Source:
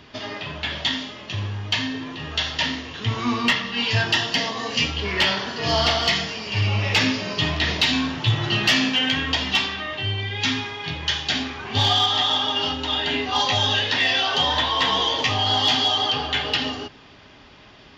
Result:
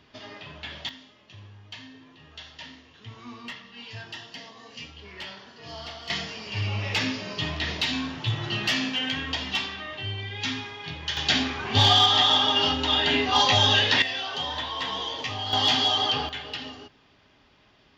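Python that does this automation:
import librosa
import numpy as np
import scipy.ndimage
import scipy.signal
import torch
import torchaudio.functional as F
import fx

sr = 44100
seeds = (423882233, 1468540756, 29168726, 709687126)

y = fx.gain(x, sr, db=fx.steps((0.0, -10.5), (0.89, -19.0), (6.1, -7.0), (11.17, 1.0), (14.02, -10.0), (15.53, -2.5), (16.29, -12.0)))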